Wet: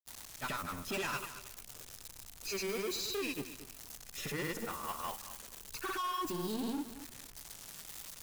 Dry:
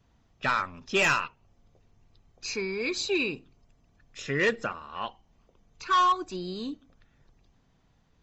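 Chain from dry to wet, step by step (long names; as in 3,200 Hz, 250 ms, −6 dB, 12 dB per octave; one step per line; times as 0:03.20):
spike at every zero crossing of −28.5 dBFS
parametric band 3,000 Hz −4 dB 2.7 octaves
brickwall limiter −27 dBFS, peak gain reduction 9 dB
hard clipping −36.5 dBFS, distortion −9 dB
granular cloud, pitch spread up and down by 0 semitones
feedback echo at a low word length 224 ms, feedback 35%, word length 9 bits, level −12 dB
level +3 dB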